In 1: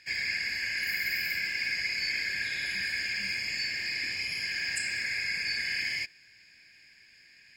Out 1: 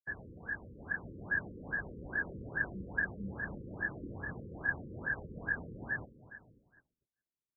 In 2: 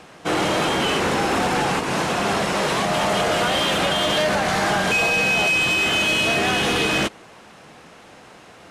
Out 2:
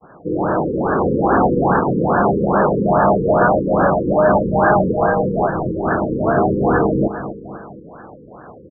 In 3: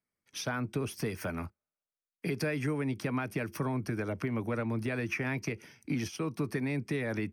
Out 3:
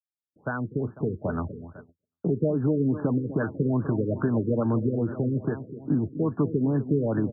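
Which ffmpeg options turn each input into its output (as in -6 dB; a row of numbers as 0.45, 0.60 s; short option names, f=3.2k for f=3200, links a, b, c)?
-af "aexciter=amount=1.2:drive=5.7:freq=3.6k,aecho=1:1:249|498|747|996|1245:0.237|0.123|0.0641|0.0333|0.0173,dynaudnorm=f=730:g=3:m=5dB,agate=range=-41dB:threshold=-45dB:ratio=16:detection=peak,afftfilt=real='re*lt(b*sr/1024,510*pow(1800/510,0.5+0.5*sin(2*PI*2.4*pts/sr)))':imag='im*lt(b*sr/1024,510*pow(1800/510,0.5+0.5*sin(2*PI*2.4*pts/sr)))':win_size=1024:overlap=0.75,volume=3.5dB"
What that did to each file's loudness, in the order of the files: -8.5, +3.0, +7.5 LU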